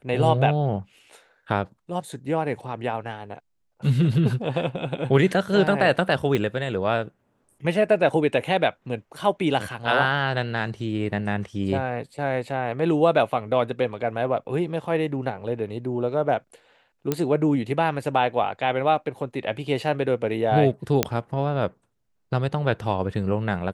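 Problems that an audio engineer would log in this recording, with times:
0:06.35: click −12 dBFS
0:17.12: click −9 dBFS
0:21.03: click −3 dBFS

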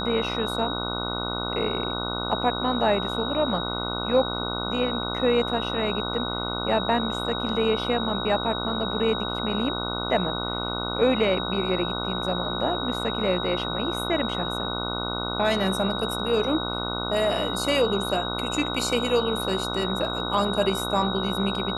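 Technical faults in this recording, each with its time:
mains buzz 60 Hz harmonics 25 −31 dBFS
whistle 3,800 Hz −31 dBFS

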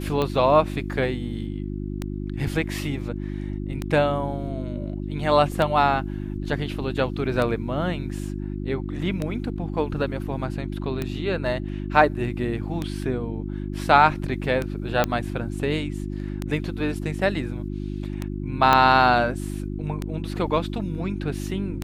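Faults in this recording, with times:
mains hum 50 Hz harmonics 7 −30 dBFS
scratch tick 33 1/3 rpm −13 dBFS
0:05.52: drop-out 2.3 ms
0:15.04: click −7 dBFS
0:18.73: click −5 dBFS

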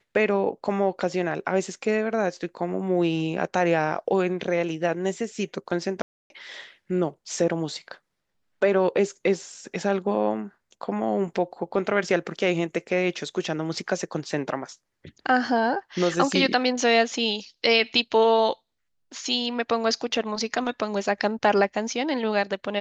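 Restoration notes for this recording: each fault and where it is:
0:06.02–0:06.30: drop-out 281 ms

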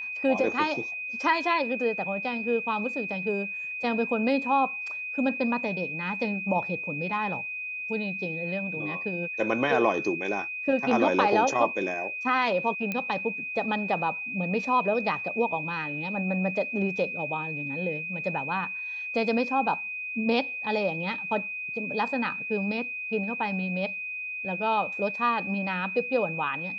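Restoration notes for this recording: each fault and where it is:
whistle 2,500 Hz −32 dBFS
0:12.92: click −16 dBFS

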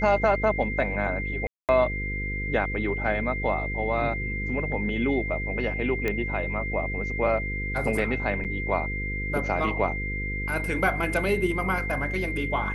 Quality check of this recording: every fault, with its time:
mains buzz 50 Hz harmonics 10 −32 dBFS
whistle 2,100 Hz −31 dBFS
0:01.47–0:01.69: drop-out 218 ms
0:06.08: click −14 dBFS
0:08.44–0:08.45: drop-out 7.7 ms

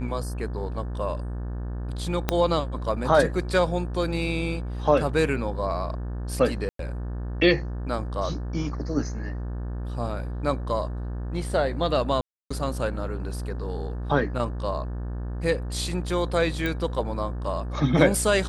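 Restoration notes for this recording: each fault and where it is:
mains buzz 60 Hz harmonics 30 −31 dBFS
0:02.29: click −7 dBFS
0:06.69–0:06.79: drop-out 103 ms
0:12.21–0:12.51: drop-out 295 ms
0:16.66: click −15 dBFS

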